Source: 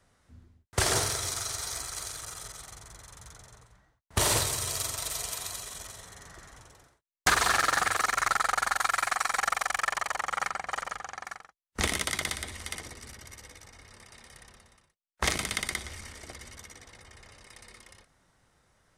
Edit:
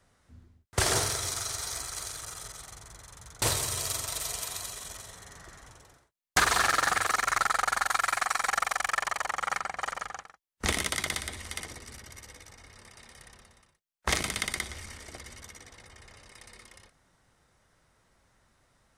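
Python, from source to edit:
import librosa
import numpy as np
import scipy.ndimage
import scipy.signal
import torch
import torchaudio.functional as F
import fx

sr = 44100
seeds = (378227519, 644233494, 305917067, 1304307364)

y = fx.edit(x, sr, fx.cut(start_s=3.42, length_s=0.9),
    fx.cut(start_s=11.12, length_s=0.25), tone=tone)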